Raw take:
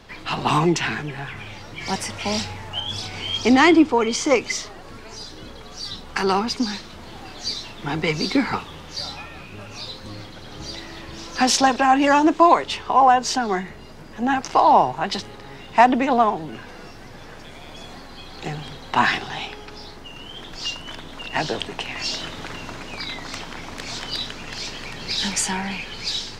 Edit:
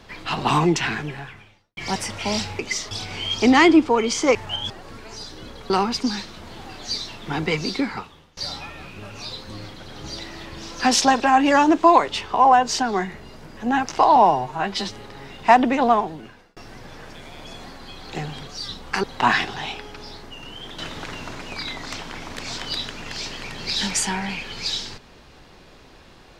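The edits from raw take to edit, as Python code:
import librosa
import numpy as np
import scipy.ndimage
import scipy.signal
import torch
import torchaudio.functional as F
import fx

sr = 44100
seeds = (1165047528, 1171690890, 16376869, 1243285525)

y = fx.edit(x, sr, fx.fade_out_span(start_s=1.09, length_s=0.68, curve='qua'),
    fx.swap(start_s=2.59, length_s=0.35, other_s=4.38, other_length_s=0.32),
    fx.move(start_s=5.7, length_s=0.56, to_s=18.77),
    fx.fade_out_to(start_s=8.0, length_s=0.93, floor_db=-23.5),
    fx.stretch_span(start_s=14.72, length_s=0.53, factor=1.5),
    fx.fade_out_span(start_s=16.24, length_s=0.62),
    fx.cut(start_s=20.52, length_s=1.68), tone=tone)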